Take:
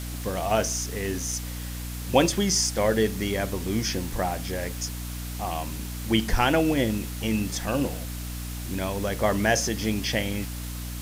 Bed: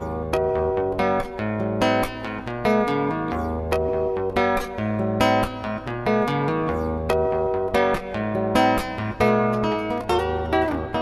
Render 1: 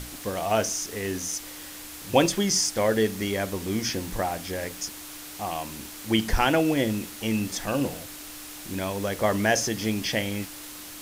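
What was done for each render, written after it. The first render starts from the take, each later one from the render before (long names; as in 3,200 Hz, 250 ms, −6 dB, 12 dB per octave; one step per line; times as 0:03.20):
mains-hum notches 60/120/180/240 Hz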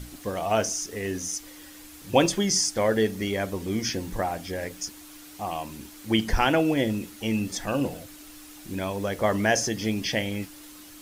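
broadband denoise 8 dB, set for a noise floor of −41 dBFS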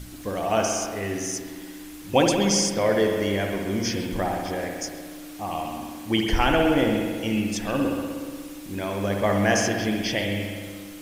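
echo through a band-pass that steps 132 ms, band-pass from 2,900 Hz, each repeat −1.4 octaves, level −9 dB
spring reverb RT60 1.7 s, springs 60 ms, chirp 70 ms, DRR 2 dB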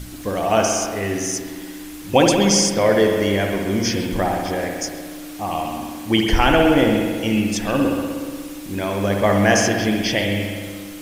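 level +5.5 dB
brickwall limiter −2 dBFS, peak gain reduction 2 dB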